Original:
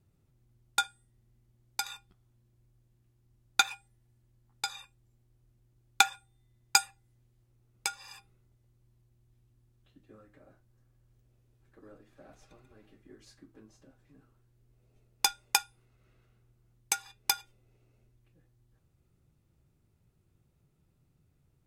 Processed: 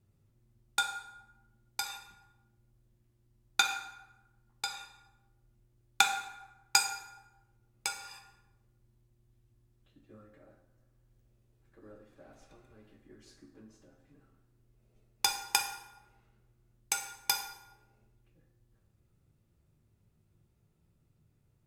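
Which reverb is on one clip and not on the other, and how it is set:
dense smooth reverb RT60 1 s, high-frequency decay 0.65×, DRR 3.5 dB
level −2.5 dB

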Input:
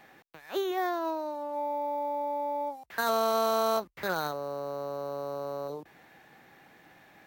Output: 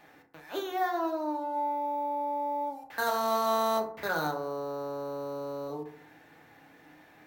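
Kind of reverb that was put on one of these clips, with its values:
feedback delay network reverb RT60 0.57 s, low-frequency decay 1.05×, high-frequency decay 0.4×, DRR 1 dB
level −2.5 dB

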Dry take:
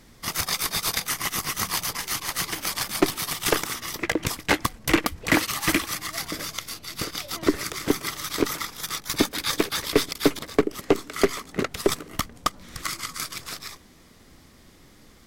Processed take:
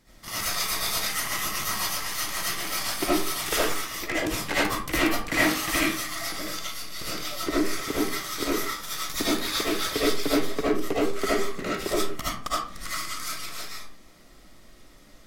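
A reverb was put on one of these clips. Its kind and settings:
comb and all-pass reverb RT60 0.43 s, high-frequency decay 0.7×, pre-delay 35 ms, DRR −10 dB
level −10.5 dB

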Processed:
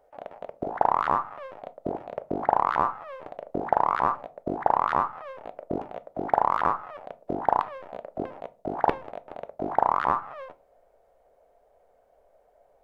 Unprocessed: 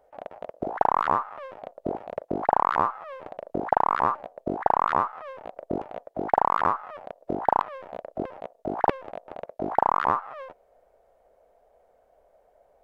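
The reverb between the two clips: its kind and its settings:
rectangular room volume 170 cubic metres, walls furnished, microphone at 0.3 metres
level −1 dB

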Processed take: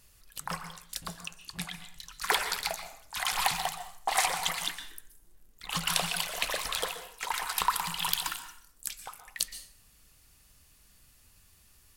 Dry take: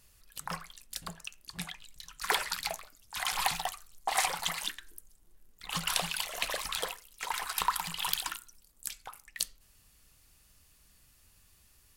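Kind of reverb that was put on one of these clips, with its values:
dense smooth reverb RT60 0.58 s, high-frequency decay 0.75×, pre-delay 110 ms, DRR 10 dB
level +2 dB

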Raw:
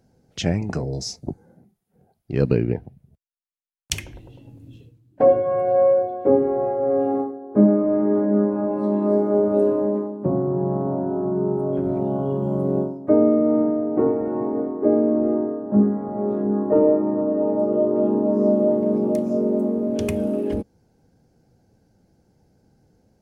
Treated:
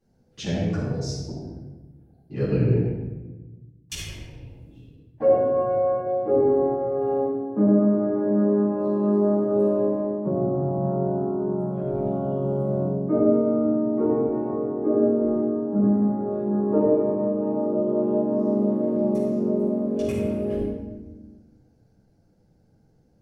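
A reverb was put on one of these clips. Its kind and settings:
rectangular room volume 720 cubic metres, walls mixed, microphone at 9.5 metres
level −19.5 dB

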